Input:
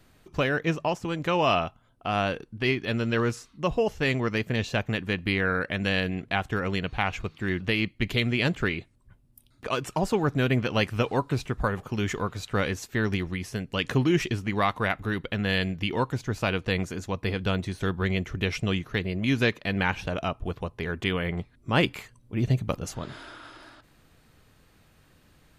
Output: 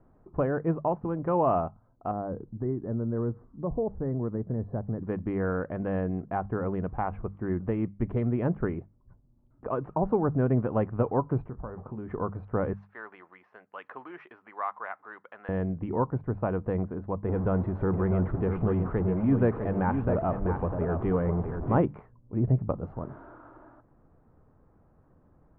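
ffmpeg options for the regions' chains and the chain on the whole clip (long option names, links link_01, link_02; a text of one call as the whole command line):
ffmpeg -i in.wav -filter_complex "[0:a]asettb=1/sr,asplit=3[link_01][link_02][link_03];[link_01]atrim=end=2.114[link_04];[link_02]atrim=start=2.11:end=5.03,asetpts=PTS-STARTPTS,afade=type=in:duration=0.004:curve=qsin,afade=type=out:start_time=2.916:duration=0.004:curve=qsin,tiltshelf=frequency=830:gain=7,acompressor=threshold=-40dB:ratio=1.5:attack=3.2:release=140:knee=1:detection=peak,asuperstop=centerf=2800:order=8:qfactor=1.7[link_05];[link_03]atrim=start=5.026[link_06];[link_04][link_05]acrossfade=duration=0.004:curve1=hsin:curve2=qsin[link_07];[link_07][link_06]acrossfade=duration=0.004:curve1=qsin:curve2=hsin,asettb=1/sr,asplit=3[link_08][link_09][link_10];[link_08]atrim=end=11.484[link_11];[link_09]atrim=start=11.48:end=12.1,asetpts=PTS-STARTPTS,afade=type=in:duration=0.004:curve=qsin,afade=type=out:start_time=0.616:duration=0.004:curve=qsin,asplit=2[link_12][link_13];[link_13]adelay=23,volume=-13dB[link_14];[link_12][link_14]amix=inputs=2:normalize=0,atrim=end_sample=27342,acompressor=threshold=-34dB:ratio=4:attack=3.2:release=140:knee=1:detection=peak[link_15];[link_10]atrim=start=12.096[link_16];[link_11][link_15]acrossfade=duration=0.004:curve1=hsin:curve2=qsin[link_17];[link_17][link_16]acrossfade=duration=0.004:curve1=qsin:curve2=hsin,asettb=1/sr,asplit=3[link_18][link_19][link_20];[link_18]atrim=end=12.734[link_21];[link_19]atrim=start=12.73:end=15.49,asetpts=PTS-STARTPTS,afade=type=in:duration=0.004:curve=qsin,afade=type=out:start_time=2.756:duration=0.004:curve=qsin,highpass=1200,equalizer=frequency=6400:width=0.33:gain=8.5[link_22];[link_20]atrim=start=15.486[link_23];[link_21][link_22]acrossfade=duration=0.004:curve1=hsin:curve2=qsin[link_24];[link_24][link_23]acrossfade=duration=0.004:curve1=qsin:curve2=hsin,asettb=1/sr,asplit=3[link_25][link_26][link_27];[link_25]atrim=end=17.284[link_28];[link_26]atrim=start=17.28:end=21.78,asetpts=PTS-STARTPTS,afade=type=in:duration=0.004:curve=qsin,afade=type=out:start_time=4.496:duration=0.004:curve=qsin,aeval=exprs='val(0)+0.5*0.0355*sgn(val(0))':channel_layout=same,aecho=1:1:653:0.447,atrim=end_sample=198450[link_29];[link_27]atrim=start=21.776[link_30];[link_28][link_29]acrossfade=duration=0.004:curve1=hsin:curve2=qsin[link_31];[link_31][link_30]acrossfade=duration=0.004:curve1=qsin:curve2=hsin,lowpass=frequency=1100:width=0.5412,lowpass=frequency=1100:width=1.3066,bandreject=frequency=50:width_type=h:width=6,bandreject=frequency=100:width_type=h:width=6,bandreject=frequency=150:width_type=h:width=6,bandreject=frequency=200:width_type=h:width=6" out.wav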